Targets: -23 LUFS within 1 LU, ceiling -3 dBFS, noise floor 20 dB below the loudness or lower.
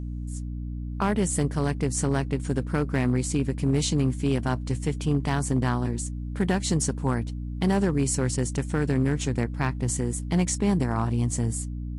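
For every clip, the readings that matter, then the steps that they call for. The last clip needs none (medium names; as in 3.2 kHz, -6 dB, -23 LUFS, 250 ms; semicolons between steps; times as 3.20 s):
clipped samples 0.8%; clipping level -16.0 dBFS; hum 60 Hz; highest harmonic 300 Hz; hum level -30 dBFS; loudness -26.5 LUFS; peak level -16.0 dBFS; loudness target -23.0 LUFS
-> clip repair -16 dBFS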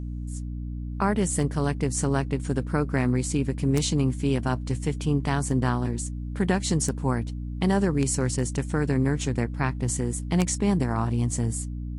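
clipped samples 0.0%; hum 60 Hz; highest harmonic 300 Hz; hum level -30 dBFS
-> de-hum 60 Hz, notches 5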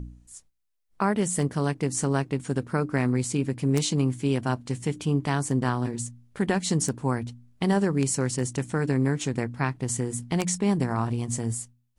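hum not found; loudness -27.0 LUFS; peak level -7.5 dBFS; loudness target -23.0 LUFS
-> trim +4 dB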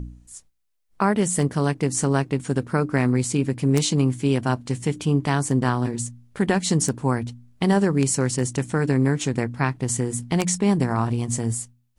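loudness -23.0 LUFS; peak level -3.5 dBFS; noise floor -61 dBFS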